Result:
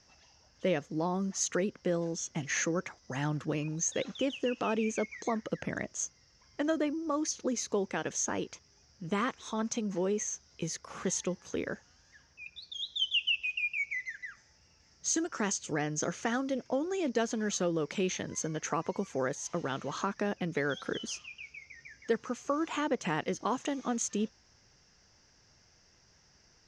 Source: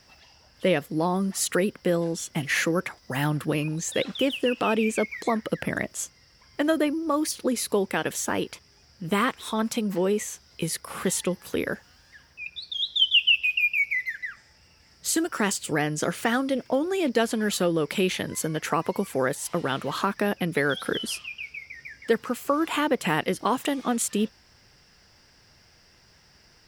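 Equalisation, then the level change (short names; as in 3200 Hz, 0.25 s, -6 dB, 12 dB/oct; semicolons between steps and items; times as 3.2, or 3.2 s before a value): ladder low-pass 6600 Hz, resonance 85%; high shelf 3300 Hz -11 dB; +6.0 dB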